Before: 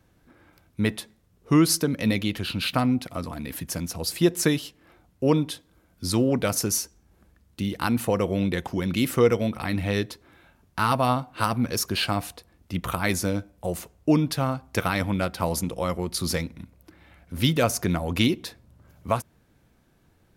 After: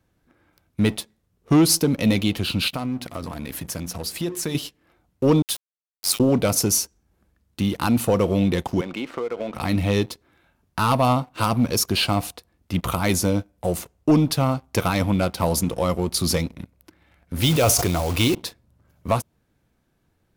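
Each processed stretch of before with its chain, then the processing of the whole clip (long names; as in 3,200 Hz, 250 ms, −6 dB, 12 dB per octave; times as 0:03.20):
0:02.68–0:04.55: mains-hum notches 60/120/180/240/300/360/420 Hz + downward compressor 2.5 to 1, threshold −33 dBFS
0:05.42–0:06.20: Butterworth high-pass 1,200 Hz 72 dB per octave + high-shelf EQ 9,100 Hz +11.5 dB + bit-depth reduction 6 bits, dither none
0:08.81–0:09.54: band-pass filter 410–2,000 Hz + downward compressor 12 to 1, threshold −28 dBFS
0:17.41–0:18.35: parametric band 210 Hz −9.5 dB + log-companded quantiser 4 bits + level that may fall only so fast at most 42 dB per second
whole clip: leveller curve on the samples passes 2; dynamic equaliser 1,700 Hz, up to −7 dB, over −41 dBFS, Q 2.3; level −2 dB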